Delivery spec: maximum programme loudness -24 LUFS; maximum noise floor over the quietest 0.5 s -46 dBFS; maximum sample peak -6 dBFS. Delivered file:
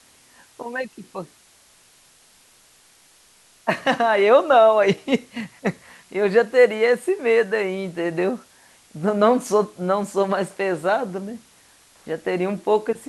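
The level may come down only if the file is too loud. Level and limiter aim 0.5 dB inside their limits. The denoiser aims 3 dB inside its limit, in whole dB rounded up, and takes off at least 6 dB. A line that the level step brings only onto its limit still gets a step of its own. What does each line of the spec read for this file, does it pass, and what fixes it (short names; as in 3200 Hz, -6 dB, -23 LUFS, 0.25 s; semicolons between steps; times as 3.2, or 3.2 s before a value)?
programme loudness -20.5 LUFS: fail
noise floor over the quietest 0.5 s -55 dBFS: OK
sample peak -4.0 dBFS: fail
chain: gain -4 dB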